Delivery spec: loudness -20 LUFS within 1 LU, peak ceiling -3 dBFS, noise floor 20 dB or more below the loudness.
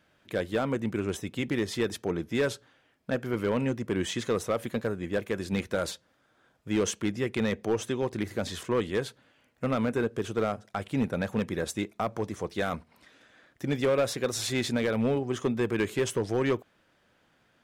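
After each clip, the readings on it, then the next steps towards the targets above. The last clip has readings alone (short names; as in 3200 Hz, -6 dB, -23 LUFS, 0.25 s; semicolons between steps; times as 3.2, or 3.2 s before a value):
clipped 0.9%; flat tops at -19.5 dBFS; loudness -30.0 LUFS; peak -19.5 dBFS; loudness target -20.0 LUFS
-> clip repair -19.5 dBFS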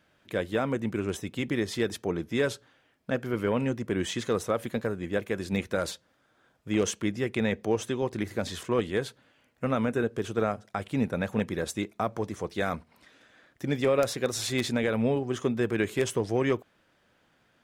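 clipped 0.0%; loudness -29.5 LUFS; peak -10.5 dBFS; loudness target -20.0 LUFS
-> gain +9.5 dB; limiter -3 dBFS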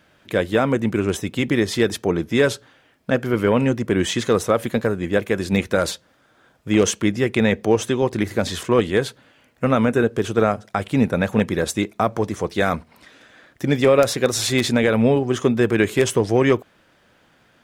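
loudness -20.0 LUFS; peak -3.0 dBFS; noise floor -58 dBFS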